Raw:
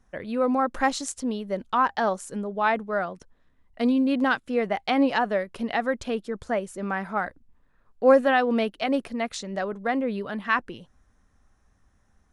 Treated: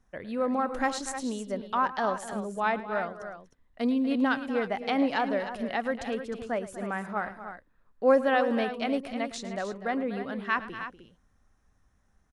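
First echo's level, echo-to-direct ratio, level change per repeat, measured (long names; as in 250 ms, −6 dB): −16.5 dB, −8.0 dB, repeats not evenly spaced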